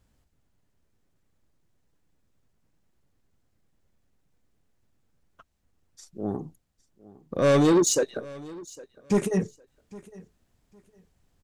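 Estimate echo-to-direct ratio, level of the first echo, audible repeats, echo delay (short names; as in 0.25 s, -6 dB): -21.0 dB, -21.0 dB, 2, 0.808 s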